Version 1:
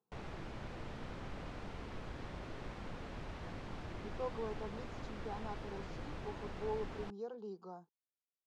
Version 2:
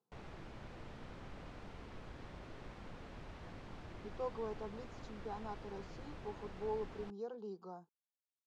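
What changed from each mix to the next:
background -5.0 dB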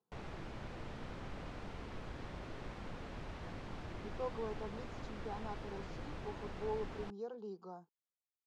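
background +4.5 dB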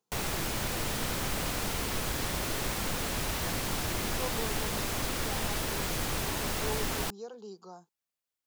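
background +11.0 dB; master: remove tape spacing loss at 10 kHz 30 dB

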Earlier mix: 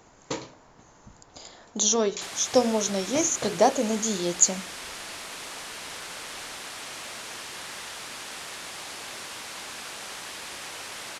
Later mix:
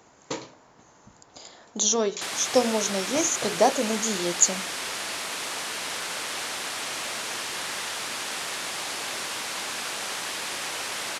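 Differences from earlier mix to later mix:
background +6.5 dB; master: add high-pass 140 Hz 6 dB/octave

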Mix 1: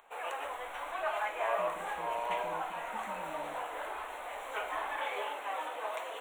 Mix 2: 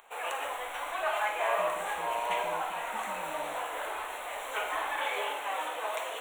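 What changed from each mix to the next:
background: send +9.5 dB; master: add treble shelf 2.9 kHz +7.5 dB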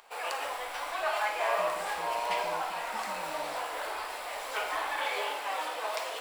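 master: remove Butterworth band-stop 4.9 kHz, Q 1.8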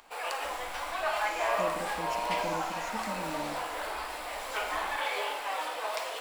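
speech +12.0 dB

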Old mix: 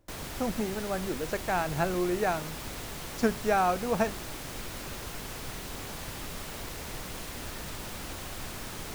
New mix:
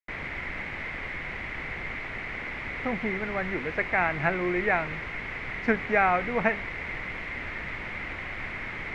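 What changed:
speech: entry +2.45 s; master: add resonant low-pass 2.1 kHz, resonance Q 8.1

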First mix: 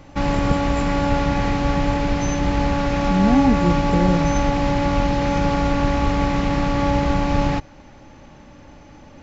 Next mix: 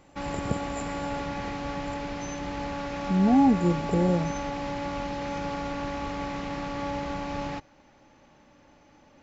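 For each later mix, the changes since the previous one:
background -10.0 dB; master: add bass shelf 160 Hz -11 dB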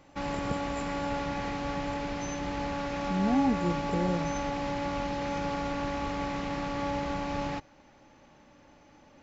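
speech -6.5 dB

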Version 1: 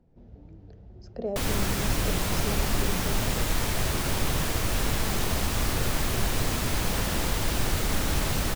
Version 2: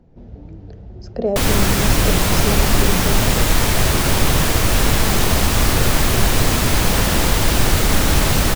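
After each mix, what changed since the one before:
speech +11.5 dB; background +11.0 dB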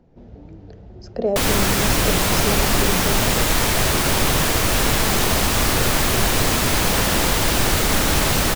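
master: add bass shelf 180 Hz -6.5 dB

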